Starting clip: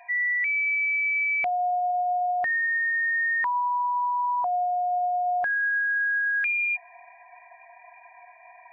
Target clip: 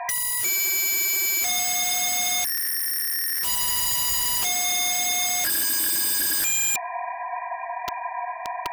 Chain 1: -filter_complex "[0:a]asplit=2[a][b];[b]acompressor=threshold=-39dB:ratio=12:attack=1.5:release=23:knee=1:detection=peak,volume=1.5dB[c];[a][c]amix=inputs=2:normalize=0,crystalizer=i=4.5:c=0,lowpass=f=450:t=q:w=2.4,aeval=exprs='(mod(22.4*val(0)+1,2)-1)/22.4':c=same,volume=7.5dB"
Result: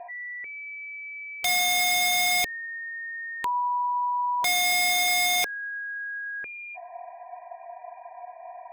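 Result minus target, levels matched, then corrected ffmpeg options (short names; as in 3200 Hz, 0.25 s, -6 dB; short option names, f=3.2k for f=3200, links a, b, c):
1000 Hz band +6.0 dB
-filter_complex "[0:a]asplit=2[a][b];[b]acompressor=threshold=-39dB:ratio=12:attack=1.5:release=23:knee=1:detection=peak,volume=1.5dB[c];[a][c]amix=inputs=2:normalize=0,crystalizer=i=4.5:c=0,lowpass=f=1.2k:t=q:w=2.4,aeval=exprs='(mod(22.4*val(0)+1,2)-1)/22.4':c=same,volume=7.5dB"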